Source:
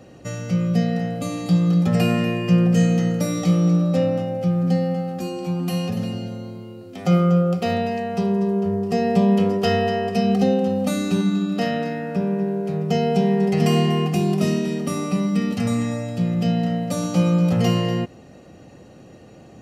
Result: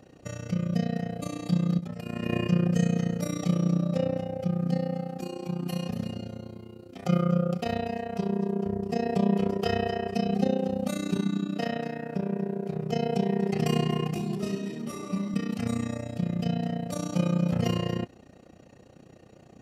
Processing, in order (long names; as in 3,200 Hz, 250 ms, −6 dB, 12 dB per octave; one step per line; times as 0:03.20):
0:01.79–0:02.47: compressor whose output falls as the input rises −23 dBFS, ratio −0.5
amplitude modulation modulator 30 Hz, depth 75%
0:14.16–0:15.34: string-ensemble chorus
level −4 dB